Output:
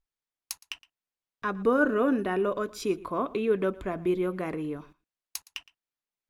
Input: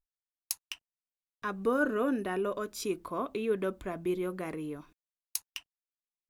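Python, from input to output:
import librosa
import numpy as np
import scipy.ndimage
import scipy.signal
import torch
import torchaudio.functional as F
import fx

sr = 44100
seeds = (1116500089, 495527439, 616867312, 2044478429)

p1 = fx.high_shelf(x, sr, hz=5800.0, db=-11.0)
p2 = p1 + fx.echo_single(p1, sr, ms=115, db=-21.0, dry=0)
y = F.gain(torch.from_numpy(p2), 5.0).numpy()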